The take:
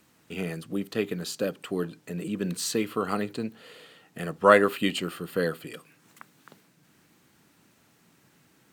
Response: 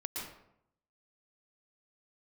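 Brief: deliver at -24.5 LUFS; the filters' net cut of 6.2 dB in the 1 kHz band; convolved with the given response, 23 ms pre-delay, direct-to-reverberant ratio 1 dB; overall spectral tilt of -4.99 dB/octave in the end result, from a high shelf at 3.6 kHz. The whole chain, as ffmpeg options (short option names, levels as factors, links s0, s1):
-filter_complex "[0:a]equalizer=f=1000:t=o:g=-7.5,highshelf=f=3600:g=-6.5,asplit=2[s0][s1];[1:a]atrim=start_sample=2205,adelay=23[s2];[s1][s2]afir=irnorm=-1:irlink=0,volume=0.794[s3];[s0][s3]amix=inputs=2:normalize=0,volume=1.41"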